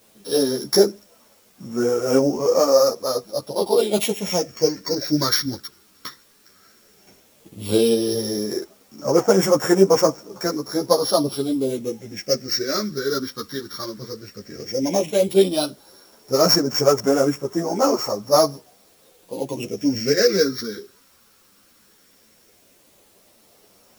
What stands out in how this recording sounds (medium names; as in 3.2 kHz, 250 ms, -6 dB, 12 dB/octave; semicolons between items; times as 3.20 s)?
a buzz of ramps at a fixed pitch in blocks of 8 samples; phasing stages 6, 0.13 Hz, lowest notch 690–3900 Hz; a quantiser's noise floor 10-bit, dither triangular; a shimmering, thickened sound